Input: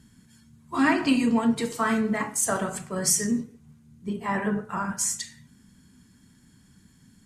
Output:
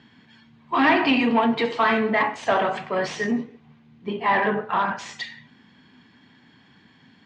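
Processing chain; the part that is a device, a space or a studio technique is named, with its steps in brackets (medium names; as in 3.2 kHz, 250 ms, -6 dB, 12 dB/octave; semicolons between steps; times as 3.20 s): overdrive pedal into a guitar cabinet (overdrive pedal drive 19 dB, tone 7.2 kHz, clips at -9.5 dBFS; cabinet simulation 100–3500 Hz, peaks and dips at 190 Hz -5 dB, 770 Hz +4 dB, 1.4 kHz -6 dB)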